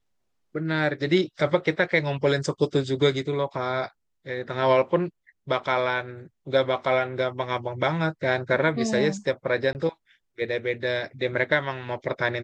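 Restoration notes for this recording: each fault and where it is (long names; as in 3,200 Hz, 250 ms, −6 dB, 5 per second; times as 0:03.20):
0:09.73–0:09.75: drop-out 19 ms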